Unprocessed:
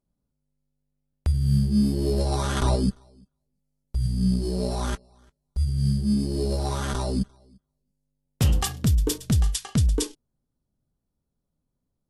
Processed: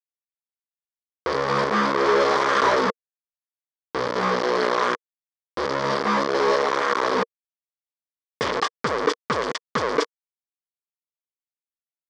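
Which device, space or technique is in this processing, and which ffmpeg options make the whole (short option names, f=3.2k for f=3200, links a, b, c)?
hand-held game console: -filter_complex "[0:a]asettb=1/sr,asplit=3[a][b][c];[a]atrim=end=6.944[d];[b]atrim=start=6.94:end=8.5,asetpts=PTS-STARTPTS,afade=t=in:d=0.004:c=qsin,afade=t=out:st=1.556:d=0.004:c=qsin,bandreject=f=50:t=h:w=6,bandreject=f=100:t=h:w=6,bandreject=f=150:t=h:w=6[e];[c]atrim=start=8.496[f];[d][e]acrossfade=d=0.004:c1=hsin:c2=qsin[g];[g][f]acrossfade=d=0.004:c1=qsin:c2=hsin,acrusher=bits=3:mix=0:aa=0.000001,highpass=450,equalizer=f=470:t=q:w=4:g=8,equalizer=f=750:t=q:w=4:g=-6,equalizer=f=1.1k:t=q:w=4:g=8,equalizer=f=1.8k:t=q:w=4:g=3,equalizer=f=2.7k:t=q:w=4:g=-9,equalizer=f=3.9k:t=q:w=4:g=-6,lowpass=f=4.6k:w=0.5412,lowpass=f=4.6k:w=1.3066,volume=6dB"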